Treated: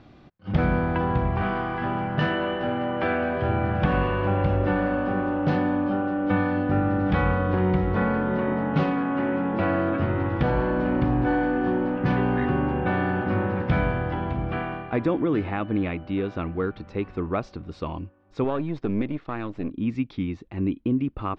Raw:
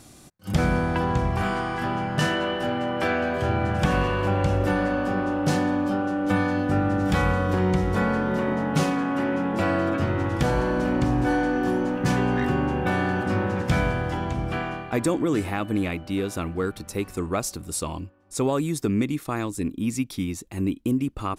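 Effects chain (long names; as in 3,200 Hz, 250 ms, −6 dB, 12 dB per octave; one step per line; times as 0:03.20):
0:18.44–0:19.70: gain on one half-wave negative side −7 dB
Bessel low-pass filter 2,400 Hz, order 6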